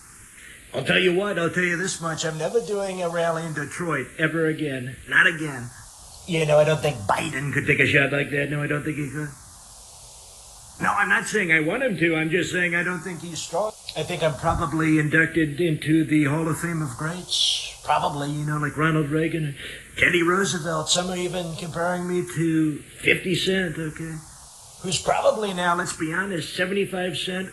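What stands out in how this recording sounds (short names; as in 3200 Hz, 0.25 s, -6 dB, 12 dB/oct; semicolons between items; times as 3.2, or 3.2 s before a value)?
a quantiser's noise floor 8-bit, dither triangular; phasing stages 4, 0.27 Hz, lowest notch 290–1000 Hz; AAC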